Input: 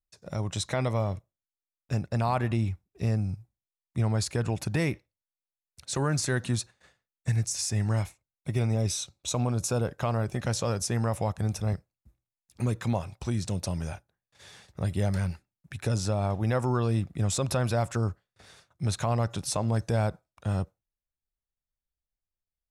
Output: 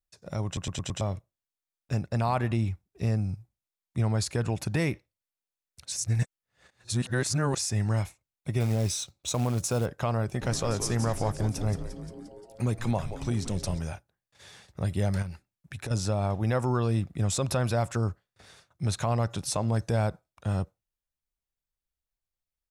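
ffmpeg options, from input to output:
-filter_complex "[0:a]asettb=1/sr,asplit=3[s0][s1][s2];[s0]atrim=end=8.604[s3];[s1]atrim=start=8.6:end=9.86,asetpts=PTS-STARTPTS,afade=t=in:d=0.004:c=qsin,afade=t=out:st=1.256:d=0.004:c=qsin,acrusher=bits=5:mode=log:mix=0:aa=0.000001[s4];[s2]atrim=start=9.856[s5];[s3][s4]acrossfade=d=0.004:c1=hsin:c2=qsin[s6];[s6][s5]acrossfade=d=0.004:c1=qsin:c2=hsin,asplit=3[s7][s8][s9];[s7]afade=t=out:st=10.41:d=0.02[s10];[s8]asplit=9[s11][s12][s13][s14][s15][s16][s17][s18][s19];[s12]adelay=175,afreqshift=-130,volume=0.335[s20];[s13]adelay=350,afreqshift=-260,volume=0.207[s21];[s14]adelay=525,afreqshift=-390,volume=0.129[s22];[s15]adelay=700,afreqshift=-520,volume=0.0794[s23];[s16]adelay=875,afreqshift=-650,volume=0.0495[s24];[s17]adelay=1050,afreqshift=-780,volume=0.0305[s25];[s18]adelay=1225,afreqshift=-910,volume=0.0191[s26];[s19]adelay=1400,afreqshift=-1040,volume=0.0117[s27];[s11][s20][s21][s22][s23][s24][s25][s26][s27]amix=inputs=9:normalize=0,afade=t=in:st=10.41:d=0.02,afade=t=out:st=13.78:d=0.02[s28];[s9]afade=t=in:st=13.78:d=0.02[s29];[s10][s28][s29]amix=inputs=3:normalize=0,asettb=1/sr,asplit=3[s30][s31][s32];[s30]atrim=end=15.224[s33];[s31]atrim=start=15.22:end=15.91,asetpts=PTS-STARTPTS,afade=t=in:d=0.004:c=qsin,afade=t=out:st=0.686:d=0.004:c=qsin,acompressor=threshold=0.0251:ratio=6:attack=3.2:release=140:knee=1:detection=peak[s34];[s32]atrim=start=15.906[s35];[s33][s34]acrossfade=d=0.004:c1=hsin:c2=qsin[s36];[s36][s35]acrossfade=d=0.004:c1=qsin:c2=hsin,asplit=8[s37][s38][s39][s40][s41][s42][s43][s44];[s37]atrim=end=0.572[s45];[s38]atrim=start=0.458:end=0.572[s46];[s39]atrim=start=0.458:end=0.572[s47];[s40]atrim=start=0.458:end=0.572[s48];[s41]atrim=start=0.458:end=0.572[s49];[s42]atrim=start=1.008:end=5.922[s50];[s43]atrim=start=5.918:end=7.592,asetpts=PTS-STARTPTS,areverse[s51];[s44]atrim=start=7.588[s52];[s45][s46]acrossfade=d=0.004:c1=hsin:c2=hsin[s53];[s53][s47]acrossfade=d=0.004:c1=hsin:c2=hsin[s54];[s54][s48]acrossfade=d=0.004:c1=hsin:c2=hsin[s55];[s55][s49]acrossfade=d=0.004:c1=hsin:c2=hsin[s56];[s56][s50]acrossfade=d=0.004:c1=hsin:c2=hsin[s57];[s57][s51]acrossfade=d=0.004:c1=hsin:c2=hsin[s58];[s58][s52]acrossfade=d=0.004:c1=hsin:c2=hsin"

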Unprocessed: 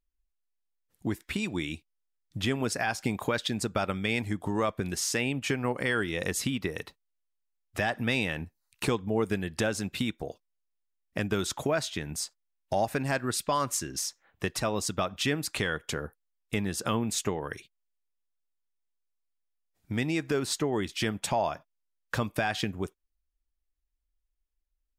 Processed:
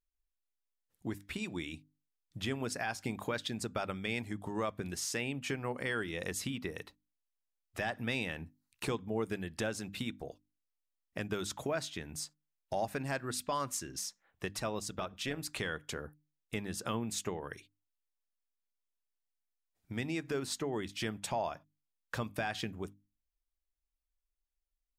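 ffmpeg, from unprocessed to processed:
-filter_complex "[0:a]asettb=1/sr,asplit=3[s0][s1][s2];[s0]atrim=end=14.794[s3];[s1]atrim=start=14.79:end=15.39,asetpts=PTS-STARTPTS,afade=t=in:d=0.004:c=qsin,afade=t=out:st=0.596:d=0.004:c=qsin,tremolo=f=260:d=0.519[s4];[s2]atrim=start=15.386[s5];[s3][s4]acrossfade=d=0.004:c1=hsin:c2=qsin[s6];[s6][s5]acrossfade=d=0.004:c1=qsin:c2=hsin,bandreject=f=50:t=h:w=6,bandreject=f=100:t=h:w=6,bandreject=f=150:t=h:w=6,bandreject=f=200:t=h:w=6,bandreject=f=250:t=h:w=6,bandreject=f=300:t=h:w=6,volume=0.447"

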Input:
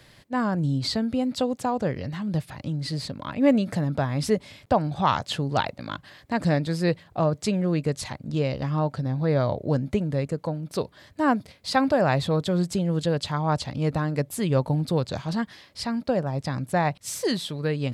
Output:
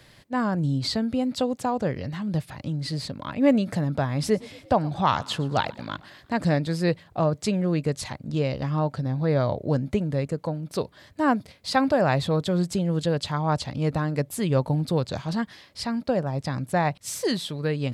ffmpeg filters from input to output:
-filter_complex "[0:a]asettb=1/sr,asplit=3[s0][s1][s2];[s0]atrim=end=4.074[s3];[s1]atrim=start=4.07:end=6.41,asetpts=PTS-STARTPTS,afade=t=in:d=0.004:c=qsin,afade=t=out:st=2.336:d=0.004:c=qsin,asplit=5[s4][s5][s6][s7][s8];[s5]adelay=115,afreqshift=35,volume=0.0794[s9];[s6]adelay=230,afreqshift=70,volume=0.0468[s10];[s7]adelay=345,afreqshift=105,volume=0.0275[s11];[s8]adelay=460,afreqshift=140,volume=0.0164[s12];[s4][s9][s10][s11][s12]amix=inputs=5:normalize=0,atrim=end_sample=103194[s13];[s2]atrim=start=6.406[s14];[s3][s13]acrossfade=d=0.004:c1=hsin:c2=qsin[s15];[s15][s14]acrossfade=d=0.004:c1=qsin:c2=hsin"

